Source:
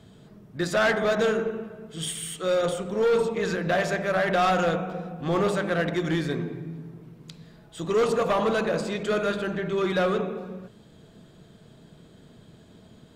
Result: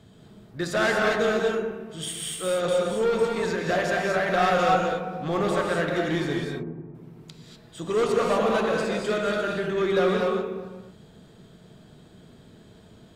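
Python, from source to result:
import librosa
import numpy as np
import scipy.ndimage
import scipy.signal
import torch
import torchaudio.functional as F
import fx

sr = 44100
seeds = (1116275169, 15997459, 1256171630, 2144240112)

y = fx.lowpass(x, sr, hz=1000.0, slope=12, at=(6.37, 6.95))
y = fx.rev_gated(y, sr, seeds[0], gate_ms=270, shape='rising', drr_db=0.0)
y = y * librosa.db_to_amplitude(-1.5)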